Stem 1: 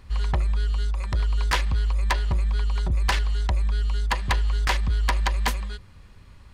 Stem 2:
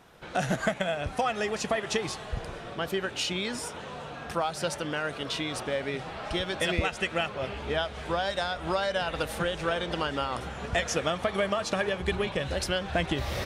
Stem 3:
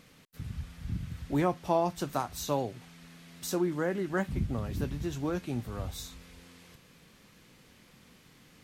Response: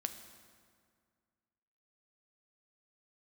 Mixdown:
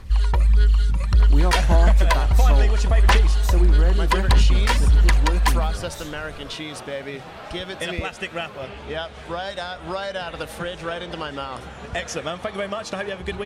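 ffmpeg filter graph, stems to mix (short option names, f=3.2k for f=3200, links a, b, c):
-filter_complex "[0:a]equalizer=f=9.4k:t=o:w=0.23:g=4.5,aphaser=in_gain=1:out_gain=1:delay=2.2:decay=0.59:speed=1.6:type=sinusoidal,volume=1dB[a];[1:a]adelay=1200,volume=0dB[b];[2:a]volume=1.5dB[c];[a][b][c]amix=inputs=3:normalize=0"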